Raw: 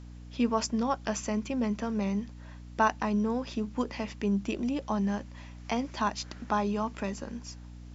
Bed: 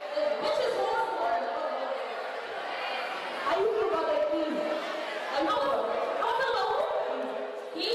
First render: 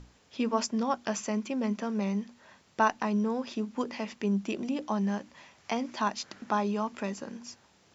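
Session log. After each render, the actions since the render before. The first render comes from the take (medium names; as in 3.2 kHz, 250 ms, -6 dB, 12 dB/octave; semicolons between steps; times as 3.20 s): hum notches 60/120/180/240/300 Hz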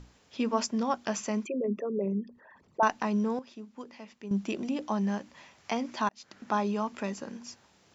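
1.45–2.83 s: resonances exaggerated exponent 3; 3.39–4.31 s: gain -11.5 dB; 6.09–6.55 s: fade in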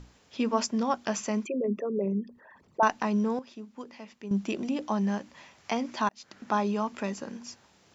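trim +1.5 dB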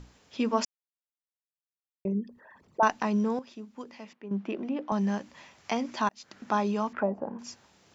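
0.65–2.05 s: mute; 4.13–4.92 s: band-pass 220–2100 Hz; 6.93–7.39 s: touch-sensitive low-pass 700–1900 Hz down, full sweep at -31 dBFS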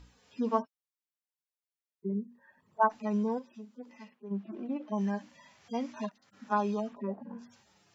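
harmonic-percussive separation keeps harmonic; bass shelf 410 Hz -4.5 dB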